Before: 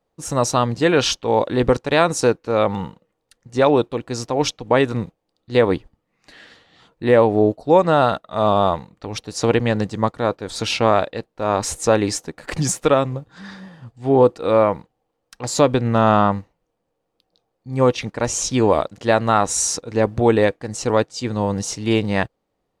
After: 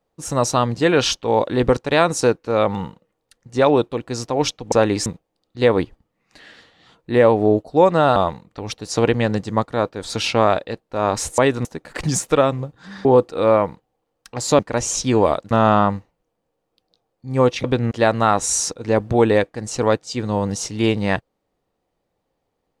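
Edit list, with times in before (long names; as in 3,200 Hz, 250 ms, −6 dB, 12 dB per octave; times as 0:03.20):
0:04.72–0:04.99: swap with 0:11.84–0:12.18
0:08.09–0:08.62: remove
0:13.58–0:14.12: remove
0:15.66–0:15.93: swap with 0:18.06–0:18.98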